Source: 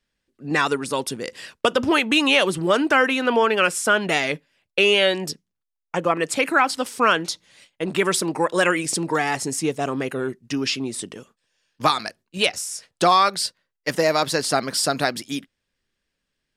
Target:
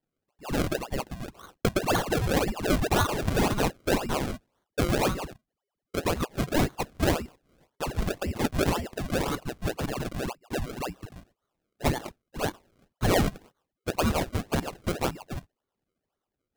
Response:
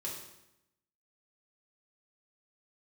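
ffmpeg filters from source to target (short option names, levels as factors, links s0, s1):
-af "lowpass=f=2600:t=q:w=0.5098,lowpass=f=2600:t=q:w=0.6013,lowpass=f=2600:t=q:w=0.9,lowpass=f=2600:t=q:w=2.563,afreqshift=-3000,acrusher=samples=34:mix=1:aa=0.000001:lfo=1:lforange=34:lforate=1.9,volume=0.501"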